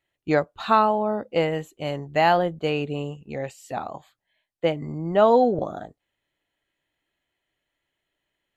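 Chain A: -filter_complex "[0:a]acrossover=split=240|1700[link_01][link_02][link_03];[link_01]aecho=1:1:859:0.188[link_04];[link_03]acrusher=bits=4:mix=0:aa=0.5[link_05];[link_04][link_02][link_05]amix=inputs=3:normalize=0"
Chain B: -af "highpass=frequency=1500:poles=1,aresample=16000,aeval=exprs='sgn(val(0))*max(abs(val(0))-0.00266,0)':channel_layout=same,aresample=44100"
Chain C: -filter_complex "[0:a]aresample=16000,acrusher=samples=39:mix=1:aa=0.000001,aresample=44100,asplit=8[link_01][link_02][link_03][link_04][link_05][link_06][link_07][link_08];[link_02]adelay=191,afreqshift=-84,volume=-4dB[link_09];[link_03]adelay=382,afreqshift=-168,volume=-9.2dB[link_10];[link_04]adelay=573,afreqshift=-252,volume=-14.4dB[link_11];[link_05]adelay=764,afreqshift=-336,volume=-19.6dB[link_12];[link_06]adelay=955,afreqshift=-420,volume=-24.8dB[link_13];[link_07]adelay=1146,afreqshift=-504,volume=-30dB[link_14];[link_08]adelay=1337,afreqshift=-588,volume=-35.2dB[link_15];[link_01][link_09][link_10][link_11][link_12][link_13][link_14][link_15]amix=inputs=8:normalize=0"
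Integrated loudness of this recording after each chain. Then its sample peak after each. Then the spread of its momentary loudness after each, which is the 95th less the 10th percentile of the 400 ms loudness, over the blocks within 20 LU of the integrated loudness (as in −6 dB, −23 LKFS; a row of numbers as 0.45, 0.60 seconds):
−24.0, −30.5, −24.0 LKFS; −4.0, −10.5, −2.5 dBFS; 15, 18, 16 LU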